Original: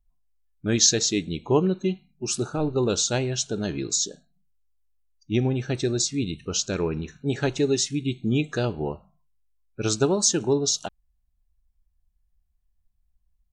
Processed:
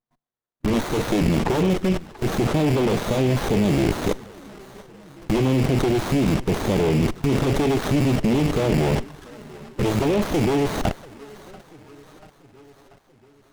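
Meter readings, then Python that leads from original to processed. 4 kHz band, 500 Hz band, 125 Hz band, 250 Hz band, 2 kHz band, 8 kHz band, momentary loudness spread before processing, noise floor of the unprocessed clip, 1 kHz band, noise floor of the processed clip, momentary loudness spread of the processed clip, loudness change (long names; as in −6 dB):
−4.0 dB, +4.0 dB, +6.5 dB, +6.0 dB, +5.5 dB, −12.5 dB, 9 LU, −70 dBFS, +8.0 dB, −62 dBFS, 8 LU, +3.0 dB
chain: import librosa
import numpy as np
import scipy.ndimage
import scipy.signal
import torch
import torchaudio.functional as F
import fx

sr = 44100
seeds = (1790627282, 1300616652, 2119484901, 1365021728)

p1 = fx.rattle_buzz(x, sr, strikes_db=-41.0, level_db=-12.0)
p2 = scipy.signal.sosfilt(scipy.signal.bessel(8, 210.0, 'highpass', norm='mag', fs=sr, output='sos'), p1)
p3 = fx.rev_schroeder(p2, sr, rt60_s=0.35, comb_ms=27, drr_db=14.0)
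p4 = fx.fold_sine(p3, sr, drive_db=15, ceiling_db=-5.0)
p5 = fx.level_steps(p4, sr, step_db=23)
p6 = p5 + fx.echo_feedback(p5, sr, ms=687, feedback_pct=59, wet_db=-19.5, dry=0)
p7 = fx.env_flanger(p6, sr, rest_ms=8.4, full_db=-20.5)
p8 = fx.running_max(p7, sr, window=17)
y = p8 * librosa.db_to_amplitude(5.5)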